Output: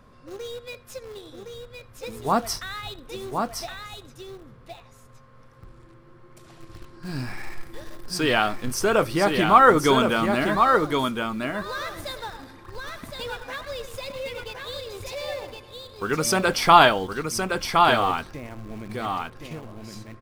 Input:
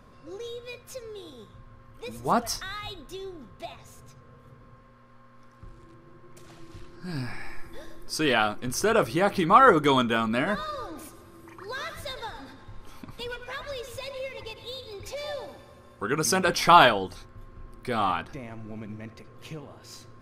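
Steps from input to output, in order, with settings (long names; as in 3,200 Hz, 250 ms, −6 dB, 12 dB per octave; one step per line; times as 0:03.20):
notch filter 6,400 Hz, Q 29
in parallel at −12 dB: bit-depth reduction 6 bits, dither none
on the sum: single-tap delay 1,065 ms −4.5 dB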